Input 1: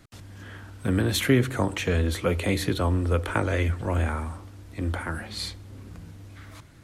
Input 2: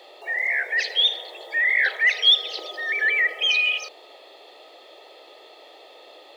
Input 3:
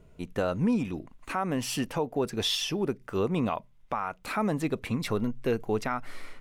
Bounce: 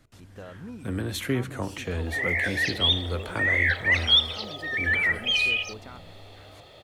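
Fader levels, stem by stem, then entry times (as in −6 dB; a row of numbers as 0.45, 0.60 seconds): −6.5, −3.0, −15.0 decibels; 0.00, 1.85, 0.00 seconds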